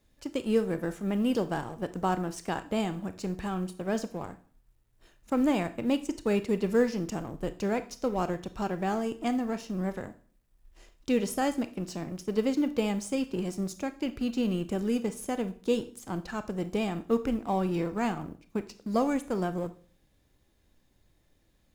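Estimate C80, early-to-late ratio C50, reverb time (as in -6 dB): 20.5 dB, 15.0 dB, 0.45 s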